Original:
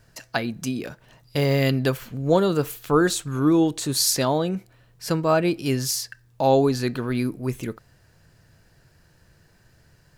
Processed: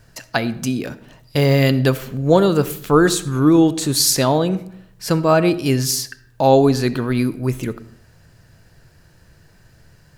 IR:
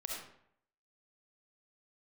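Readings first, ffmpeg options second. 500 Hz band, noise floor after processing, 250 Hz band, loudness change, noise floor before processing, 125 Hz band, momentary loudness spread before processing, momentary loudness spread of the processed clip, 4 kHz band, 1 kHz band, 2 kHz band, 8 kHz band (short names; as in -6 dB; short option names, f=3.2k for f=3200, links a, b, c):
+5.5 dB, -52 dBFS, +6.0 dB, +5.5 dB, -58 dBFS, +6.5 dB, 11 LU, 12 LU, +5.0 dB, +5.0 dB, +5.0 dB, +5.0 dB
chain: -filter_complex "[0:a]asplit=2[a][b];[1:a]atrim=start_sample=2205,lowshelf=f=300:g=10.5[c];[b][c]afir=irnorm=-1:irlink=0,volume=-14.5dB[d];[a][d]amix=inputs=2:normalize=0,volume=4dB"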